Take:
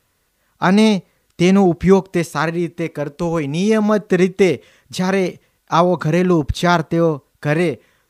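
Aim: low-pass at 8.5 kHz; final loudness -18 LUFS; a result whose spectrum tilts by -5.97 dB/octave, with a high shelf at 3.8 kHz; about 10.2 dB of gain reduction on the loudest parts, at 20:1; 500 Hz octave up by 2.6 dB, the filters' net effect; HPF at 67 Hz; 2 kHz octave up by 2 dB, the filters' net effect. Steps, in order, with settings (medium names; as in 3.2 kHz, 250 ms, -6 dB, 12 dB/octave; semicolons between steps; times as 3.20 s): high-pass 67 Hz; low-pass 8.5 kHz; peaking EQ 500 Hz +3.5 dB; peaking EQ 2 kHz +3.5 dB; treble shelf 3.8 kHz -5 dB; compression 20:1, threshold -15 dBFS; trim +3.5 dB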